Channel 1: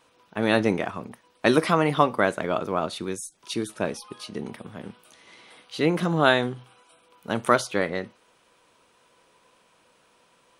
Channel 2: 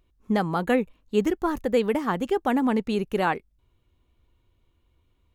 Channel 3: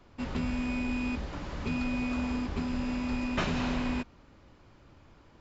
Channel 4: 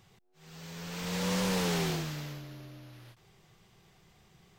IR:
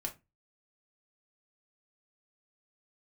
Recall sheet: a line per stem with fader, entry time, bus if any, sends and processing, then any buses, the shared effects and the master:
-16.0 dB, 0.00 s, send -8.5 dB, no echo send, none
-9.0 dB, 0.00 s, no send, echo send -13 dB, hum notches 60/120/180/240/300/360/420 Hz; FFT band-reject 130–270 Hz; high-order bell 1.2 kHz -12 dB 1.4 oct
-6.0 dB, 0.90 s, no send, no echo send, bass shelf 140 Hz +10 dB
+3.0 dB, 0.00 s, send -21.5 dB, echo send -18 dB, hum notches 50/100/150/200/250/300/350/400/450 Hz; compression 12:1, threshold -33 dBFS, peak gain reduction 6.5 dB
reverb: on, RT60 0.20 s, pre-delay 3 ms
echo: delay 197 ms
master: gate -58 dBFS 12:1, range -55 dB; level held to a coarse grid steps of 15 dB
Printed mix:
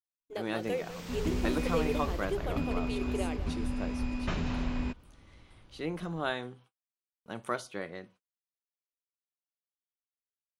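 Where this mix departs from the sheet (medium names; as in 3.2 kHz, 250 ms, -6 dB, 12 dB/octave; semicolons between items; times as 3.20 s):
stem 4 +3.0 dB -> -7.0 dB; master: missing level held to a coarse grid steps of 15 dB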